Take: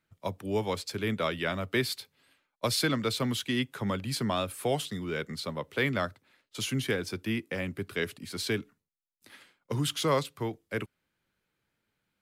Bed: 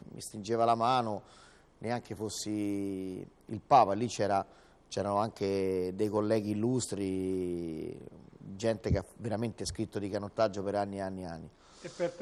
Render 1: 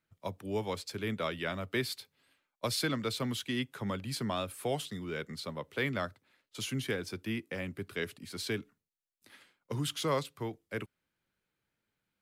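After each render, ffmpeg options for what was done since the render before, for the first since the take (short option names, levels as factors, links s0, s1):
-af "volume=0.596"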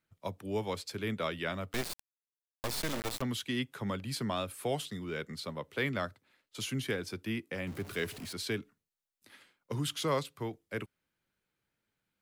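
-filter_complex "[0:a]asettb=1/sr,asplit=3[s0][s1][s2];[s0]atrim=end=1.734[s3];[s1]atrim=start=1.73:end=3.22,asetpts=PTS-STARTPTS,afade=t=in:d=0.004:c=qsin,afade=t=out:st=1.486:d=0.004:c=qsin,acrusher=bits=3:dc=4:mix=0:aa=0.000001[s4];[s2]atrim=start=3.216[s5];[s3][s4]acrossfade=d=0.004:c1=hsin:c2=qsin[s6];[s6][s5]acrossfade=d=0.004:c1=qsin:c2=hsin,asettb=1/sr,asplit=3[s7][s8][s9];[s7]atrim=end=7.674[s10];[s8]atrim=start=7.67:end=8.33,asetpts=PTS-STARTPTS,afade=t=in:d=0.004:c=qsin,afade=t=out:st=0.656:d=0.004:c=qsin,aeval=exprs='val(0)+0.5*0.00708*sgn(val(0))':c=same[s11];[s9]atrim=start=8.326[s12];[s10][s11]acrossfade=d=0.004:c1=hsin:c2=qsin[s13];[s13][s12]acrossfade=d=0.004:c1=qsin:c2=hsin"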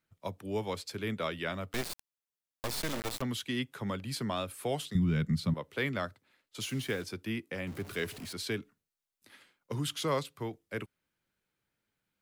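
-filter_complex "[0:a]asettb=1/sr,asplit=3[s0][s1][s2];[s0]atrim=end=4.954[s3];[s1]atrim=start=4.95:end=5.54,asetpts=PTS-STARTPTS,afade=t=in:d=0.004:c=qsin,afade=t=out:st=0.586:d=0.004:c=qsin,lowshelf=f=270:t=q:w=1.5:g=14[s4];[s2]atrim=start=5.536[s5];[s3][s4]acrossfade=d=0.004:c1=hsin:c2=qsin[s6];[s6][s5]acrossfade=d=0.004:c1=qsin:c2=hsin,asettb=1/sr,asplit=3[s7][s8][s9];[s7]atrim=end=6.624[s10];[s8]atrim=start=6.62:end=7.04,asetpts=PTS-STARTPTS,afade=t=in:d=0.004:c=qsin,afade=t=out:st=0.416:d=0.004:c=qsin,acrusher=bits=7:mix=0:aa=0.5[s11];[s9]atrim=start=7.036[s12];[s10][s11]acrossfade=d=0.004:c1=hsin:c2=qsin[s13];[s13][s12]acrossfade=d=0.004:c1=qsin:c2=hsin"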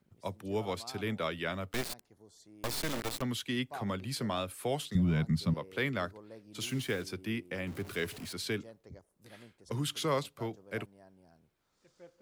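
-filter_complex "[1:a]volume=0.0841[s0];[0:a][s0]amix=inputs=2:normalize=0"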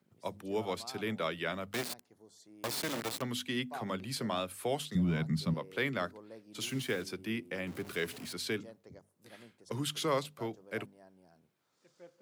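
-af "highpass=130,bandreject=f=50:t=h:w=6,bandreject=f=100:t=h:w=6,bandreject=f=150:t=h:w=6,bandreject=f=200:t=h:w=6,bandreject=f=250:t=h:w=6"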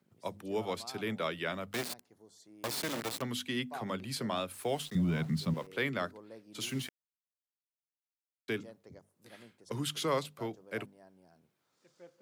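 -filter_complex "[0:a]asettb=1/sr,asplit=3[s0][s1][s2];[s0]atrim=end=4.534[s3];[s1]atrim=start=4.53:end=5.67,asetpts=PTS-STARTPTS,afade=t=in:d=0.004:c=qsin,afade=t=out:st=1.136:d=0.004:c=qsin,aeval=exprs='val(0)*gte(abs(val(0)),0.00355)':c=same[s4];[s2]atrim=start=5.666[s5];[s3][s4]acrossfade=d=0.004:c1=hsin:c2=qsin[s6];[s6][s5]acrossfade=d=0.004:c1=qsin:c2=hsin,asplit=3[s7][s8][s9];[s7]atrim=end=6.89,asetpts=PTS-STARTPTS,afade=t=out:st=6.886:d=0.004:c=hsin[s10];[s8]atrim=start=6.89:end=8.48,asetpts=PTS-STARTPTS,volume=0[s11];[s9]atrim=start=8.48,asetpts=PTS-STARTPTS,afade=t=in:d=0.004:c=hsin[s12];[s10][s11][s12]concat=n=3:v=0:a=1"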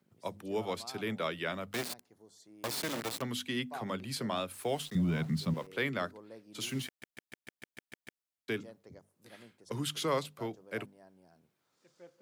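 -filter_complex "[0:a]asplit=10[s0][s1][s2][s3][s4][s5][s6][s7][s8][s9];[s0]atrim=end=7.022[s10];[s1]atrim=start=6.868:end=7.022[s11];[s2]atrim=start=6.868:end=7.022[s12];[s3]atrim=start=6.868:end=7.022[s13];[s4]atrim=start=6.868:end=7.022[s14];[s5]atrim=start=6.868:end=7.022[s15];[s6]atrim=start=6.868:end=7.022[s16];[s7]atrim=start=6.868:end=7.022[s17];[s8]atrim=start=6.868:end=7.022[s18];[s9]atrim=start=8.218[s19];[s10][s11]acrossfade=d=0.004:c1=hsin:c2=hsin[s20];[s20][s12]acrossfade=d=0.004:c1=hsin:c2=hsin[s21];[s21][s13]acrossfade=d=0.004:c1=hsin:c2=hsin[s22];[s22][s14]acrossfade=d=0.004:c1=hsin:c2=hsin[s23];[s23][s15]acrossfade=d=0.004:c1=hsin:c2=hsin[s24];[s24][s16]acrossfade=d=0.004:c1=hsin:c2=hsin[s25];[s25][s17]acrossfade=d=0.004:c1=hsin:c2=hsin[s26];[s26][s18]acrossfade=d=0.004:c1=hsin:c2=hsin[s27];[s27][s19]acrossfade=d=0.004:c1=hsin:c2=hsin"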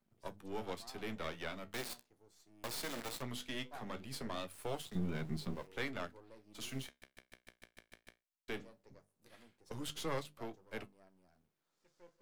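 -af "aeval=exprs='if(lt(val(0),0),0.251*val(0),val(0))':c=same,flanger=delay=8.4:depth=9.6:regen=-58:speed=0.19:shape=triangular"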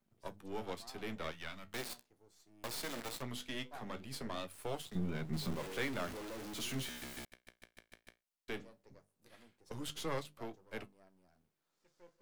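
-filter_complex "[0:a]asettb=1/sr,asplit=3[s0][s1][s2];[s0]atrim=end=1.314[s3];[s1]atrim=start=1.31:end=1.72,asetpts=PTS-STARTPTS,afade=t=in:d=0.004:c=qsin,afade=t=out:st=0.406:d=0.004:c=qsin,equalizer=f=430:t=o:w=1.8:g=-11[s4];[s2]atrim=start=1.716[s5];[s3][s4]acrossfade=d=0.004:c1=hsin:c2=qsin[s6];[s6][s5]acrossfade=d=0.004:c1=qsin:c2=hsin,asettb=1/sr,asplit=3[s7][s8][s9];[s7]atrim=end=5.334[s10];[s8]atrim=start=5.33:end=7.25,asetpts=PTS-STARTPTS,afade=t=in:d=0.004:c=qsin,afade=t=out:st=1.916:d=0.004:c=qsin,aeval=exprs='val(0)+0.5*0.00944*sgn(val(0))':c=same[s11];[s9]atrim=start=7.246[s12];[s10][s11]acrossfade=d=0.004:c1=hsin:c2=qsin[s13];[s13][s12]acrossfade=d=0.004:c1=qsin:c2=hsin"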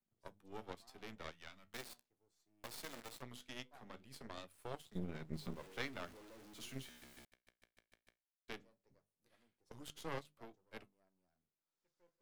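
-af "aeval=exprs='0.0841*(cos(1*acos(clip(val(0)/0.0841,-1,1)))-cos(1*PI/2))+0.015*(cos(3*acos(clip(val(0)/0.0841,-1,1)))-cos(3*PI/2))+0.00299*(cos(7*acos(clip(val(0)/0.0841,-1,1)))-cos(7*PI/2))':c=same"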